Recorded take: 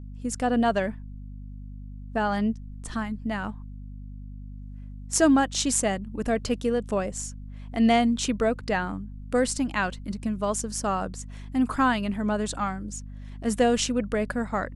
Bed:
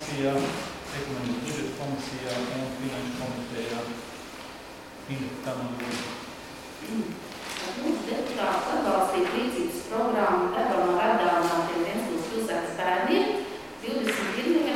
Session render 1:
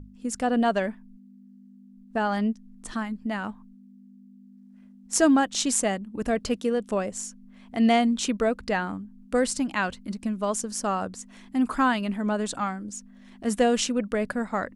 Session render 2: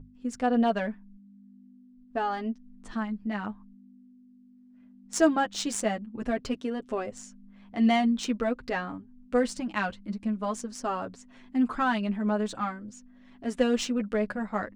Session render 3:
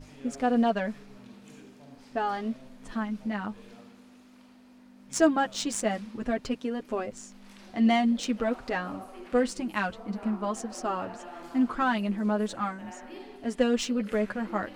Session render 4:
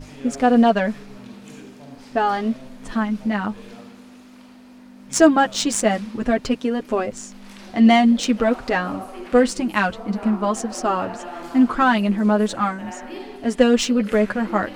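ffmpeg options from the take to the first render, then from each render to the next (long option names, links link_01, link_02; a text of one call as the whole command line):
ffmpeg -i in.wav -af "bandreject=frequency=50:width_type=h:width=6,bandreject=frequency=100:width_type=h:width=6,bandreject=frequency=150:width_type=h:width=6" out.wav
ffmpeg -i in.wav -af "adynamicsmooth=sensitivity=2:basefreq=4600,flanger=delay=7.2:depth=2.5:regen=-3:speed=0.45:shape=sinusoidal" out.wav
ffmpeg -i in.wav -i bed.wav -filter_complex "[1:a]volume=-20.5dB[link_01];[0:a][link_01]amix=inputs=2:normalize=0" out.wav
ffmpeg -i in.wav -af "volume=9.5dB,alimiter=limit=-2dB:level=0:latency=1" out.wav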